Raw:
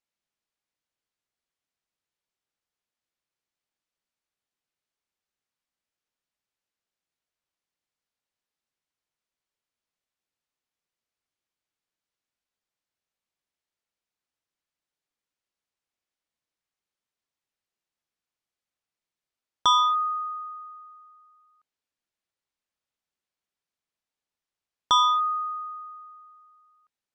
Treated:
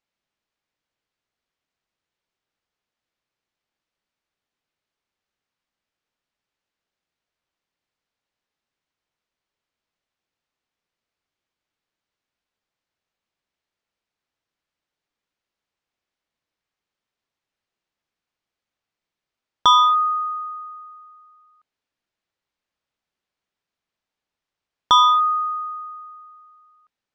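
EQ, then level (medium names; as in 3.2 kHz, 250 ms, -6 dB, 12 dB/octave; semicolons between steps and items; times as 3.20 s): distance through air 89 m; +7.0 dB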